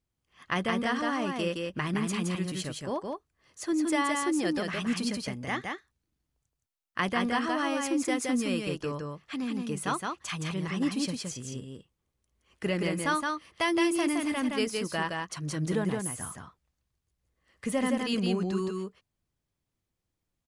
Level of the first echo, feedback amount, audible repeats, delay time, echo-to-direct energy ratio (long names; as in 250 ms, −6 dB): −3.5 dB, repeats not evenly spaced, 1, 168 ms, −3.5 dB